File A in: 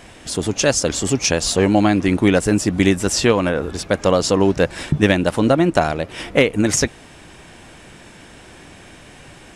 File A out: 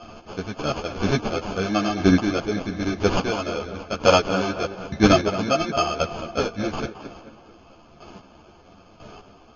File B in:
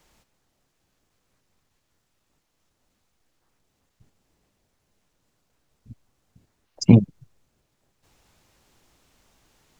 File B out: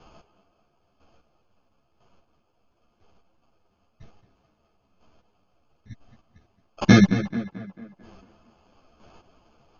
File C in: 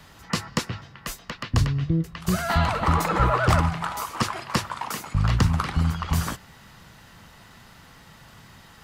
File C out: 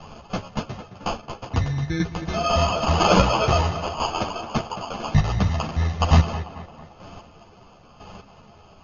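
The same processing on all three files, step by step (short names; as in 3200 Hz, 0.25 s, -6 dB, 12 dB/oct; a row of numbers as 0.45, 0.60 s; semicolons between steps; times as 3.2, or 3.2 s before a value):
bell 680 Hz +12 dB 0.2 oct; sample-and-hold 23×; chopper 1 Hz, depth 65%, duty 20%; brick-wall FIR low-pass 6800 Hz; on a send: tape echo 0.22 s, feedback 53%, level -10.5 dB, low-pass 2700 Hz; on the sum: ensemble effect; normalise peaks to -2 dBFS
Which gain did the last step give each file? +2.0, +13.5, +10.5 dB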